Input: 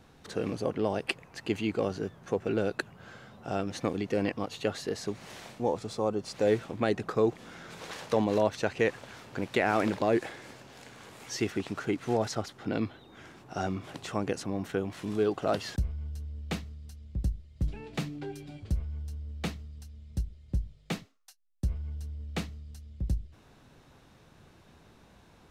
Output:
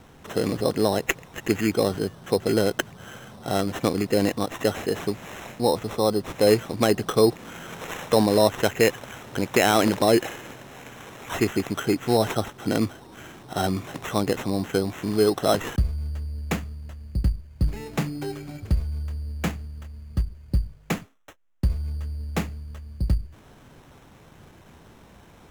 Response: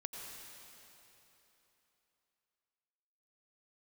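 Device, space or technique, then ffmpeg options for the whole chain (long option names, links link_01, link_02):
crushed at another speed: -af "asetrate=22050,aresample=44100,acrusher=samples=19:mix=1:aa=0.000001,asetrate=88200,aresample=44100,volume=7.5dB"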